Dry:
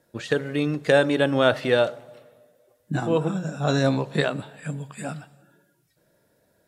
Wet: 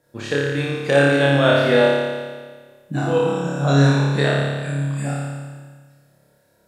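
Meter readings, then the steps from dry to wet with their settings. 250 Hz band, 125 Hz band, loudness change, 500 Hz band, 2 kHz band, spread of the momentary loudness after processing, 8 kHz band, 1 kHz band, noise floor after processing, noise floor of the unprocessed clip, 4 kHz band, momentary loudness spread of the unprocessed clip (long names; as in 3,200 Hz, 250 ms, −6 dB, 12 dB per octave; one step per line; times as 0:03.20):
+4.5 dB, +9.0 dB, +5.0 dB, +4.5 dB, +6.5 dB, 15 LU, +5.5 dB, +5.0 dB, −60 dBFS, −67 dBFS, +5.0 dB, 15 LU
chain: flutter between parallel walls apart 4.9 metres, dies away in 1.5 s
level −1 dB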